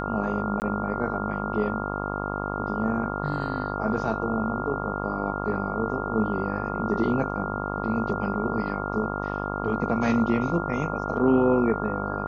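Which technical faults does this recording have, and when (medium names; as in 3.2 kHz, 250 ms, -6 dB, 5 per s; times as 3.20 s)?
buzz 50 Hz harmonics 27 -31 dBFS
whine 1.4 kHz -33 dBFS
0.60–0.62 s: dropout 19 ms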